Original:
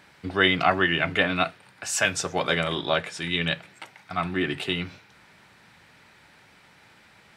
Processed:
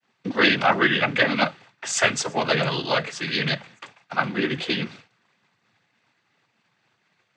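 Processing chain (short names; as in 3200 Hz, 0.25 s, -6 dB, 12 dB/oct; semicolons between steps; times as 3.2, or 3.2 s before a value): noise vocoder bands 16; expander -44 dBFS; gain +3 dB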